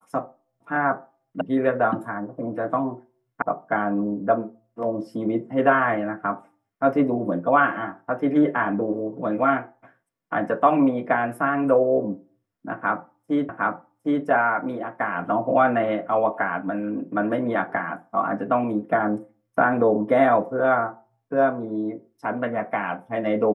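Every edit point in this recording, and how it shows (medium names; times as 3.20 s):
1.41 s: sound stops dead
3.42 s: sound stops dead
13.49 s: repeat of the last 0.76 s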